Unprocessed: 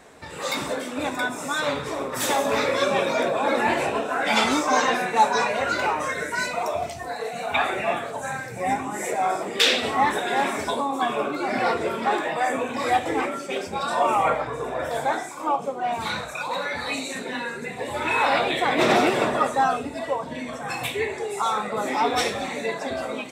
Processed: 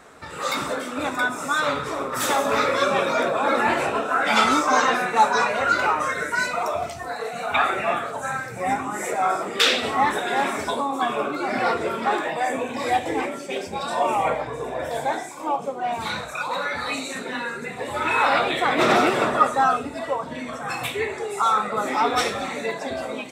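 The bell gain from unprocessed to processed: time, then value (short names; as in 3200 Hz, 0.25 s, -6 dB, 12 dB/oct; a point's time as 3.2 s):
bell 1300 Hz 0.33 oct
+10 dB
from 9.69 s +4 dB
from 12.3 s -7.5 dB
from 15.56 s 0 dB
from 16.32 s +8 dB
from 22.71 s -3 dB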